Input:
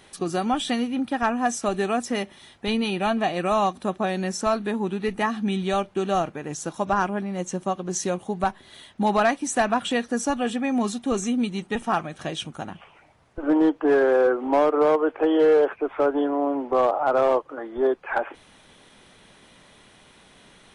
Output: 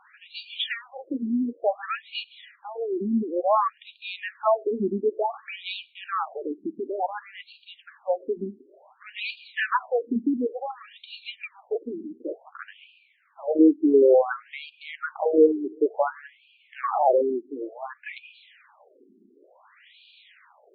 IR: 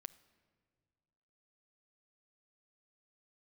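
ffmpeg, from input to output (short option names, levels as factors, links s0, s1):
-filter_complex "[0:a]asplit=2[s0][s1];[s1]equalizer=f=110:w=2.4:g=8[s2];[1:a]atrim=start_sample=2205[s3];[s2][s3]afir=irnorm=-1:irlink=0,volume=1.12[s4];[s0][s4]amix=inputs=2:normalize=0,afftfilt=real='re*between(b*sr/1024,280*pow(3400/280,0.5+0.5*sin(2*PI*0.56*pts/sr))/1.41,280*pow(3400/280,0.5+0.5*sin(2*PI*0.56*pts/sr))*1.41)':imag='im*between(b*sr/1024,280*pow(3400/280,0.5+0.5*sin(2*PI*0.56*pts/sr))/1.41,280*pow(3400/280,0.5+0.5*sin(2*PI*0.56*pts/sr))*1.41)':win_size=1024:overlap=0.75"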